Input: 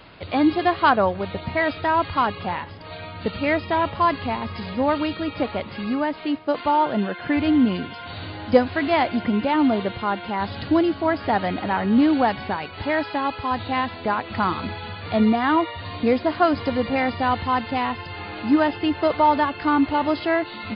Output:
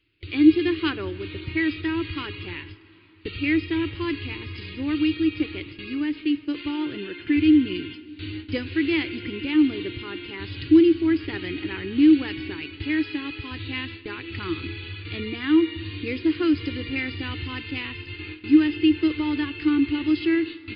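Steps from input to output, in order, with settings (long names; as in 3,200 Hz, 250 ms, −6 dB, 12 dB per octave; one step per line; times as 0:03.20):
noise gate with hold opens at −24 dBFS
drawn EQ curve 120 Hz 0 dB, 220 Hz −18 dB, 320 Hz +7 dB, 670 Hz −30 dB, 2,600 Hz +4 dB, 3,800 Hz −3 dB
dense smooth reverb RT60 3.9 s, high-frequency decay 0.95×, DRR 17.5 dB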